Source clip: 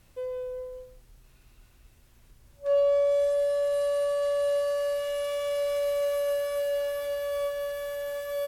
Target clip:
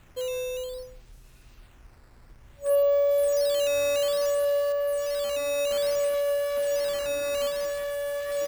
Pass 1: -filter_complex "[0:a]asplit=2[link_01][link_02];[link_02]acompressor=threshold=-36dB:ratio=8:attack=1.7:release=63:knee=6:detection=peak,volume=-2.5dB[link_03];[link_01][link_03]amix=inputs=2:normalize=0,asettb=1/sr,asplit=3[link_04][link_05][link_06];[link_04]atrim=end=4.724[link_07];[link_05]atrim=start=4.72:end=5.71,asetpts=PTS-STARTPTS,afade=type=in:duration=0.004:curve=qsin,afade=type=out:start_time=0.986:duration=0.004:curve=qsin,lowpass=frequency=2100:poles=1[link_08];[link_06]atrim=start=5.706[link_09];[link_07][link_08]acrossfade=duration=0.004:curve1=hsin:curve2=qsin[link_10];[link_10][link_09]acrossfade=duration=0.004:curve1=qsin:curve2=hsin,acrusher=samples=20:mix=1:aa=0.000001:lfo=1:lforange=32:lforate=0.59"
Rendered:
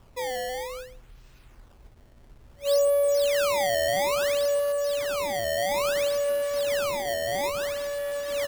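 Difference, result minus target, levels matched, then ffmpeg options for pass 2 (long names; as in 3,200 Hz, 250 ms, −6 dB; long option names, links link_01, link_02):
sample-and-hold swept by an LFO: distortion +9 dB
-filter_complex "[0:a]asplit=2[link_01][link_02];[link_02]acompressor=threshold=-36dB:ratio=8:attack=1.7:release=63:knee=6:detection=peak,volume=-2.5dB[link_03];[link_01][link_03]amix=inputs=2:normalize=0,asettb=1/sr,asplit=3[link_04][link_05][link_06];[link_04]atrim=end=4.724[link_07];[link_05]atrim=start=4.72:end=5.71,asetpts=PTS-STARTPTS,afade=type=in:duration=0.004:curve=qsin,afade=type=out:start_time=0.986:duration=0.004:curve=qsin,lowpass=frequency=2100:poles=1[link_08];[link_06]atrim=start=5.706[link_09];[link_07][link_08]acrossfade=duration=0.004:curve1=hsin:curve2=qsin[link_10];[link_10][link_09]acrossfade=duration=0.004:curve1=qsin:curve2=hsin,acrusher=samples=8:mix=1:aa=0.000001:lfo=1:lforange=12.8:lforate=0.59"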